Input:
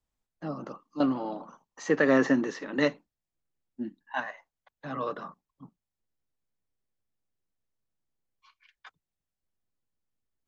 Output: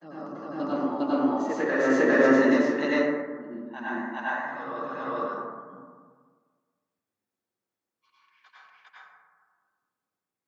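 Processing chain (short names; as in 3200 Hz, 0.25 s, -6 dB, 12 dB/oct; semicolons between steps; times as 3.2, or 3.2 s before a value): HPF 210 Hz 12 dB/oct; on a send: reverse echo 0.404 s -4 dB; on the sum: plate-style reverb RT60 1.6 s, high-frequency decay 0.3×, pre-delay 80 ms, DRR -9.5 dB; gain -6 dB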